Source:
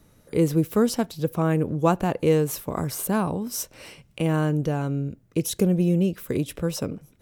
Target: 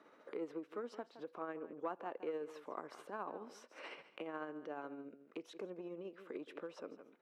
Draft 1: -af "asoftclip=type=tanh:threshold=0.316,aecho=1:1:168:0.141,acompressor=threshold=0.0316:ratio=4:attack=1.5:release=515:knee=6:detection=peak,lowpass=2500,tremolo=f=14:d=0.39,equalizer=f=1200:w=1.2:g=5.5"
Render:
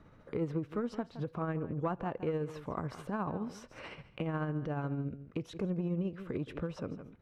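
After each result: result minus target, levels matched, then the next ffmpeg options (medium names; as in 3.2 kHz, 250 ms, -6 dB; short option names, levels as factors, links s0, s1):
compression: peak gain reduction -6 dB; 250 Hz band +2.5 dB
-af "asoftclip=type=tanh:threshold=0.316,aecho=1:1:168:0.141,acompressor=threshold=0.0126:ratio=4:attack=1.5:release=515:knee=6:detection=peak,lowpass=2500,tremolo=f=14:d=0.39,equalizer=f=1200:w=1.2:g=5.5"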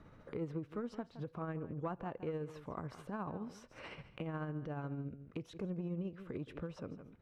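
250 Hz band +3.0 dB
-af "asoftclip=type=tanh:threshold=0.316,aecho=1:1:168:0.141,acompressor=threshold=0.0126:ratio=4:attack=1.5:release=515:knee=6:detection=peak,lowpass=2500,tremolo=f=14:d=0.39,highpass=f=310:w=0.5412,highpass=f=310:w=1.3066,equalizer=f=1200:w=1.2:g=5.5"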